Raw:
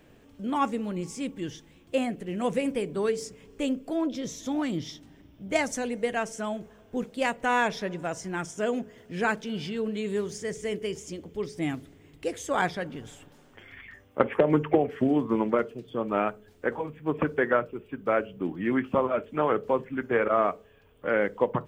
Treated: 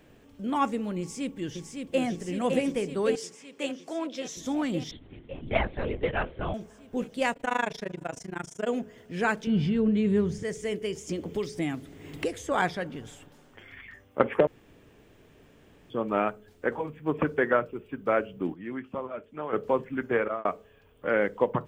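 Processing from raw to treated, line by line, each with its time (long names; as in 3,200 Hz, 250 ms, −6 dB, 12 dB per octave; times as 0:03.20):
0:00.99–0:02.03: delay throw 560 ms, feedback 80%, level −4.5 dB
0:03.15–0:04.37: meter weighting curve A
0:04.91–0:06.54: linear-prediction vocoder at 8 kHz whisper
0:07.33–0:08.67: amplitude modulation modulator 26 Hz, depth 95%
0:09.47–0:10.43: bass and treble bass +14 dB, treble −10 dB
0:11.09–0:12.52: multiband upward and downward compressor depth 100%
0:14.47–0:15.90: fill with room tone
0:18.54–0:19.53: clip gain −10 dB
0:20.03–0:20.45: fade out equal-power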